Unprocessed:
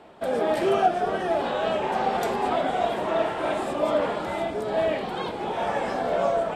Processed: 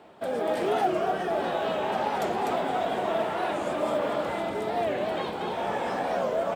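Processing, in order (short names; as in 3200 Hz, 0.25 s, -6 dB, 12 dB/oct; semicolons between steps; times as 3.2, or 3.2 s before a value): HPF 72 Hz; in parallel at -2 dB: limiter -21.5 dBFS, peak gain reduction 11.5 dB; on the sum: companded quantiser 8-bit; on a send: echo 0.237 s -3.5 dB; on the sum: record warp 45 rpm, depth 160 cents; gain -7.5 dB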